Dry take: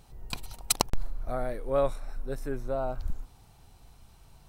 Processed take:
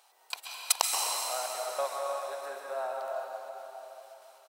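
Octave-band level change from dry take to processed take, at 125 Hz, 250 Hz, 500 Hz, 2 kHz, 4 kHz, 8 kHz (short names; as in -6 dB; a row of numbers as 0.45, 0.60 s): under -40 dB, under -20 dB, -3.5 dB, +3.5 dB, +3.5 dB, +3.5 dB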